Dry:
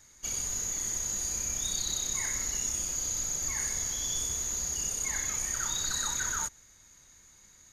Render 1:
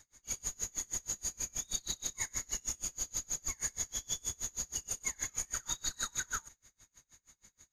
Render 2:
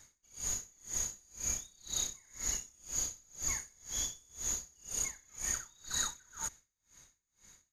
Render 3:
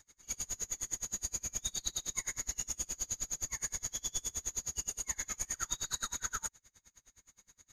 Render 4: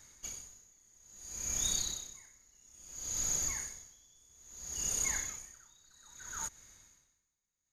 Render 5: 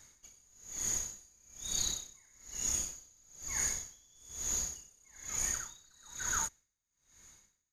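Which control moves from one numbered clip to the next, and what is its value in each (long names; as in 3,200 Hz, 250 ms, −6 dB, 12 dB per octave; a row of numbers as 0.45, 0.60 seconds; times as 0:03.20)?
tremolo with a sine in dB, speed: 6.3, 2, 9.6, 0.6, 1.1 Hertz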